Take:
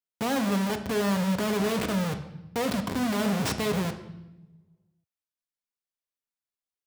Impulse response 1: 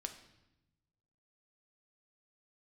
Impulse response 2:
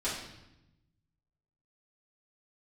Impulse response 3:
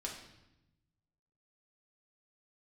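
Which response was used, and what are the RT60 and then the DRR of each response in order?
1; 0.90 s, 0.90 s, 0.90 s; 5.5 dB, -10.5 dB, -2.0 dB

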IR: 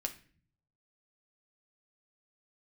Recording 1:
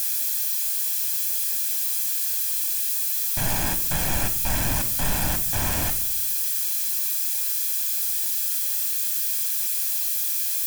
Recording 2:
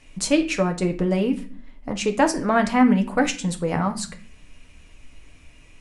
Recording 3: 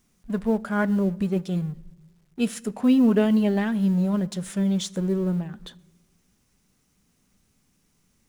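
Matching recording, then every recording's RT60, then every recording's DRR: 2; 0.65 s, 0.45 s, no single decay rate; 8.0 dB, 4.5 dB, 18.0 dB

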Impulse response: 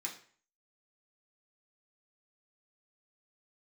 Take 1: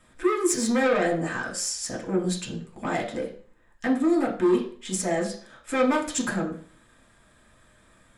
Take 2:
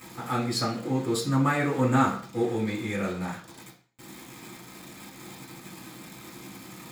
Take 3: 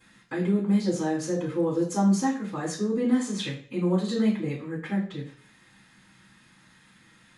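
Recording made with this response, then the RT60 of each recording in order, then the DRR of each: 1; 0.45 s, 0.45 s, 0.45 s; -2.5 dB, -7.5 dB, -17.0 dB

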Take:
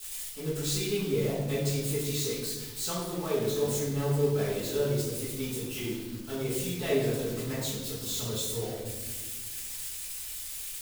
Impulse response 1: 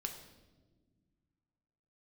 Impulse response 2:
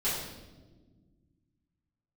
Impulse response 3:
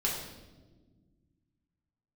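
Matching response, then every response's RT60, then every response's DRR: 2; no single decay rate, no single decay rate, no single decay rate; 4.0 dB, -12.0 dB, -4.0 dB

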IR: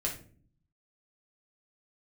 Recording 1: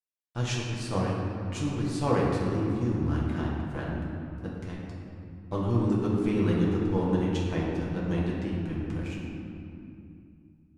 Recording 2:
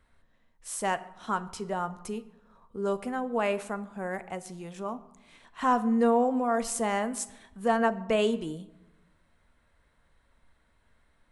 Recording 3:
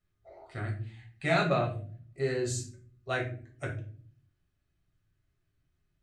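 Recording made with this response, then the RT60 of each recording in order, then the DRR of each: 3; 2.7 s, 1.0 s, 0.45 s; -5.0 dB, 11.5 dB, -2.0 dB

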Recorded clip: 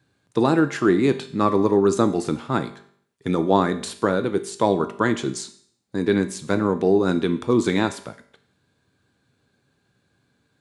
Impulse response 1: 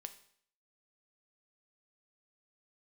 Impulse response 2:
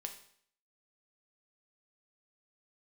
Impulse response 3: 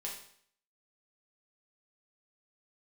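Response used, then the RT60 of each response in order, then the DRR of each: 1; 0.60 s, 0.60 s, 0.60 s; 8.5 dB, 4.5 dB, -3.5 dB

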